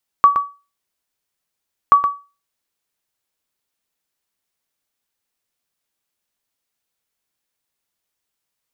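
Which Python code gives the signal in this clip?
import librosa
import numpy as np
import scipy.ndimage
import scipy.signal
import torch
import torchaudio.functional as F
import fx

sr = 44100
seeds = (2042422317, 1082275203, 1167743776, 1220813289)

y = fx.sonar_ping(sr, hz=1140.0, decay_s=0.3, every_s=1.68, pings=2, echo_s=0.12, echo_db=-8.5, level_db=-2.0)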